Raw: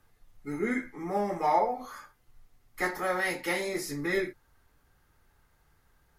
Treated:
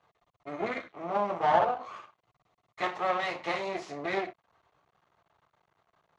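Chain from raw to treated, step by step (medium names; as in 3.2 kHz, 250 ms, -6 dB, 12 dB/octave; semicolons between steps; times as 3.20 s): half-wave rectifier; cabinet simulation 160–5600 Hz, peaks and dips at 250 Hz -9 dB, 670 Hz +9 dB, 1.1 kHz +8 dB, 1.6 kHz -5 dB, 5.1 kHz -9 dB; trim +2 dB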